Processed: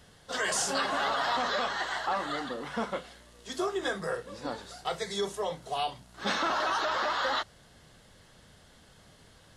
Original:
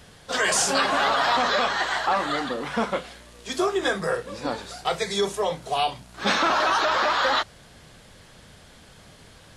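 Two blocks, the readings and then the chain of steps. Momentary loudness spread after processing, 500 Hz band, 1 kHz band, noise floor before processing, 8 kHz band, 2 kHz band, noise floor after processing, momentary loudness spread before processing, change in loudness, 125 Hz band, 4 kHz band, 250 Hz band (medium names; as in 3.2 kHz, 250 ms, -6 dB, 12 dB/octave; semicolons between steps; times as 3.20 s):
10 LU, -7.5 dB, -7.5 dB, -50 dBFS, -7.5 dB, -8.0 dB, -58 dBFS, 10 LU, -7.5 dB, -7.5 dB, -7.5 dB, -7.5 dB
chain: band-stop 2.4 kHz, Q 9.8; trim -7.5 dB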